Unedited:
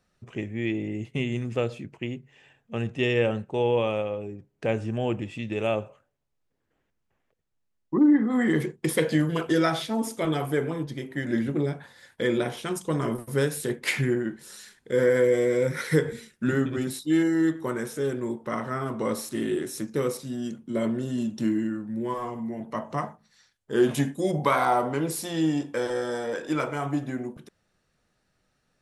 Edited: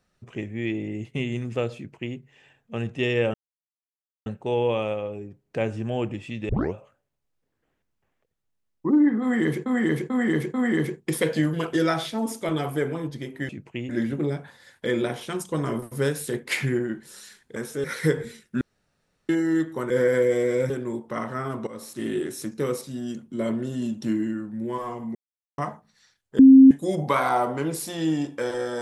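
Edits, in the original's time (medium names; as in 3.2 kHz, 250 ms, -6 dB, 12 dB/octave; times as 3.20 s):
1.76–2.16 s: copy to 11.25 s
3.34 s: insert silence 0.92 s
5.57 s: tape start 0.25 s
8.30–8.74 s: loop, 4 plays
14.92–15.72 s: swap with 17.78–18.06 s
16.49–17.17 s: room tone
19.03–19.45 s: fade in, from -18 dB
22.51–22.94 s: mute
23.75–24.07 s: bleep 266 Hz -6.5 dBFS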